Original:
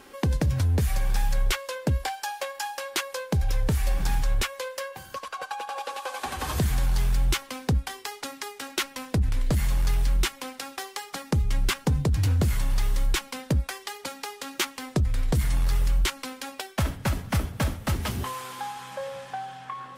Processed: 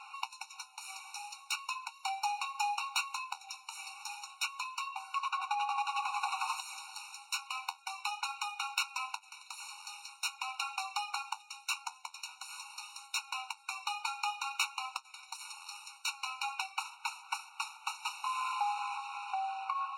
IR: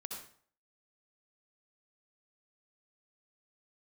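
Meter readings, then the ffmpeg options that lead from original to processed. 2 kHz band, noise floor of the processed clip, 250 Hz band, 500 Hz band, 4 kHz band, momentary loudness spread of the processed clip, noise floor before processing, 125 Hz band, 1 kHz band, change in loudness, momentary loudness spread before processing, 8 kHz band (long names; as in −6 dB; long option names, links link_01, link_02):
−4.5 dB, −59 dBFS, below −40 dB, below −35 dB, −5.0 dB, 11 LU, −48 dBFS, below −40 dB, −1.0 dB, −9.5 dB, 11 LU, −6.5 dB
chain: -filter_complex "[0:a]acrossover=split=4100[link_01][link_02];[link_01]acompressor=threshold=-33dB:ratio=16[link_03];[link_02]acrusher=bits=2:mode=log:mix=0:aa=0.000001[link_04];[link_03][link_04]amix=inputs=2:normalize=0,highpass=frequency=440:width=0.5412,highpass=frequency=440:width=1.3066,equalizer=frequency=570:width_type=q:width=4:gain=-10,equalizer=frequency=930:width_type=q:width=4:gain=6,equalizer=frequency=2600:width_type=q:width=4:gain=7,equalizer=frequency=5000:width_type=q:width=4:gain=-4,equalizer=frequency=7500:width_type=q:width=4:gain=-7,lowpass=frequency=8300:width=0.5412,lowpass=frequency=8300:width=1.3066,aeval=exprs='0.178*(cos(1*acos(clip(val(0)/0.178,-1,1)))-cos(1*PI/2))+0.00158*(cos(2*acos(clip(val(0)/0.178,-1,1)))-cos(2*PI/2))+0.00178*(cos(3*acos(clip(val(0)/0.178,-1,1)))-cos(3*PI/2))+0.0398*(cos(4*acos(clip(val(0)/0.178,-1,1)))-cos(4*PI/2))+0.00178*(cos(8*acos(clip(val(0)/0.178,-1,1)))-cos(8*PI/2))':channel_layout=same,asplit=2[link_05][link_06];[link_06]aeval=exprs='0.0531*(abs(mod(val(0)/0.0531+3,4)-2)-1)':channel_layout=same,volume=-11dB[link_07];[link_05][link_07]amix=inputs=2:normalize=0,flanger=delay=7.5:depth=4.8:regen=-63:speed=0.46:shape=sinusoidal,afftfilt=real='re*eq(mod(floor(b*sr/1024/740),2),1)':imag='im*eq(mod(floor(b*sr/1024/740),2),1)':win_size=1024:overlap=0.75,volume=4.5dB"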